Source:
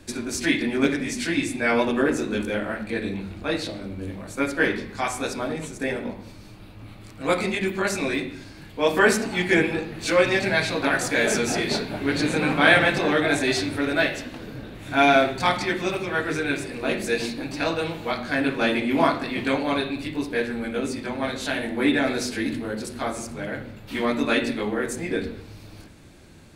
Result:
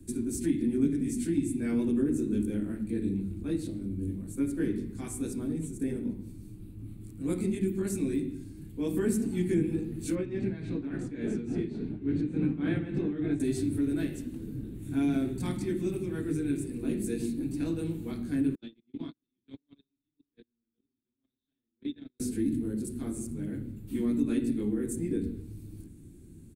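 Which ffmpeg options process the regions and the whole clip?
-filter_complex "[0:a]asettb=1/sr,asplit=3[a][b][c];[a]atrim=end=10.154[d];[b]atrim=start=10.15:end=13.4,asetpts=PTS-STARTPTS,afade=t=in:d=0.004:c=qsin,afade=t=out:st=3.246:d=0.004:c=qsin,lowpass=3k,tremolo=f=3.5:d=0.68[e];[c]atrim=start=13.396[f];[d][e]acrossfade=d=0.004:c1=hsin:c2=qsin[g];[g][f]acrossfade=d=0.004:c1=qsin:c2=hsin,asettb=1/sr,asplit=3[h][i][j];[h]atrim=end=18.554[k];[i]atrim=start=18.55:end=22.2,asetpts=PTS-STARTPTS,afade=t=in:d=0.004:c=qsin,afade=t=out:st=3.646:d=0.004:c=qsin,agate=range=-55dB:threshold=-19dB:ratio=16:release=100:detection=peak,lowpass=f=3.6k:t=q:w=7.2,acompressor=threshold=-32dB:ratio=2.5:attack=3.2:release=140:knee=1:detection=peak[l];[j]atrim=start=22.196[m];[k][l]acrossfade=d=0.004:c1=hsin:c2=qsin[n];[n][m]acrossfade=d=0.004:c1=qsin:c2=hsin,firequalizer=gain_entry='entry(330,0);entry(590,-24);entry(3300,-20);entry(4900,-20);entry(8400,-3)':delay=0.05:min_phase=1,acrossover=split=220[o][p];[p]acompressor=threshold=-28dB:ratio=4[q];[o][q]amix=inputs=2:normalize=0"

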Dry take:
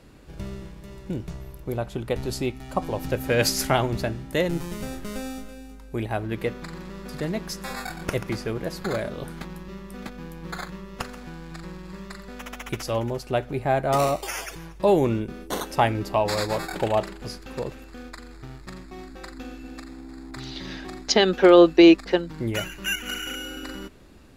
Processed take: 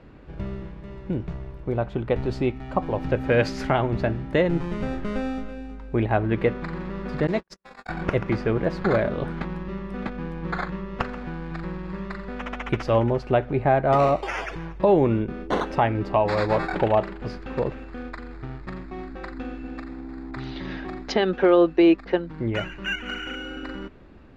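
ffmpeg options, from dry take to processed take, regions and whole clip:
-filter_complex "[0:a]asettb=1/sr,asplit=3[a][b][c];[a]atrim=end=7.274[d];[b]atrim=start=7.27:end=7.89,asetpts=PTS-STARTPTS,afade=t=in:d=0.004:c=qsin,afade=t=out:st=0.616:d=0.004:c=qsin,agate=range=-55dB:threshold=-31dB:ratio=16:release=100:detection=peak,bass=f=250:g=-7,treble=f=4k:g=10[e];[c]atrim=start=7.886[f];[d][e]acrossfade=d=0.004:c1=hsin:c2=qsin[g];[g][f]acrossfade=d=0.004:c1=qsin:c2=hsin,lowpass=2.3k,dynaudnorm=f=250:g=31:m=3.5dB,alimiter=limit=-12dB:level=0:latency=1:release=490,volume=3dB"

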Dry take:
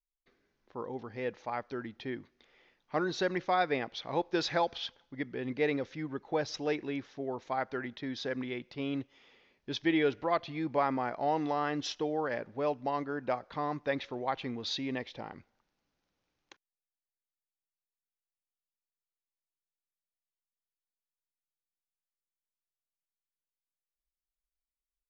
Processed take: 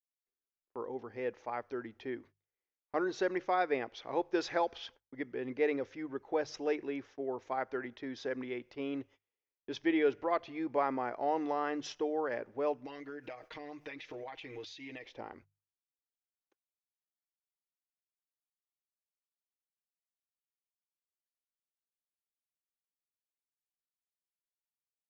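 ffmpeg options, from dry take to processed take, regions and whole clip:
-filter_complex "[0:a]asettb=1/sr,asplit=3[a][b][c];[a]atrim=end=12.854[d];[b]atrim=start=12.85:end=15.05,asetpts=PTS-STARTPTS,afade=t=in:d=0.004:c=qsin,afade=t=out:st=2.196:d=0.004:c=qsin,highshelf=f=1.7k:t=q:w=1.5:g=8,aecho=1:1:6.4:0.91,atrim=end_sample=97020,acompressor=threshold=-38dB:ratio=12:attack=3.2:release=140:knee=1:detection=peak[e];[c]atrim=start=15.046[f];[d][e]acrossfade=d=0.004:c1=hsin:c2=qsin[g];[g][f]acrossfade=d=0.004:c1=qsin:c2=hsin,equalizer=f=160:t=o:w=0.67:g=-12,equalizer=f=400:t=o:w=0.67:g=4,equalizer=f=4k:t=o:w=0.67:g=-8,agate=range=-31dB:threshold=-53dB:ratio=16:detection=peak,bandreject=f=50:t=h:w=6,bandreject=f=100:t=h:w=6,bandreject=f=150:t=h:w=6,volume=-2.5dB"

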